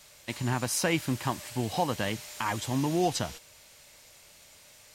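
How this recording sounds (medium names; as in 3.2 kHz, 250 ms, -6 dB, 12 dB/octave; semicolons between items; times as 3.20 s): noise floor -55 dBFS; spectral tilt -4.5 dB/octave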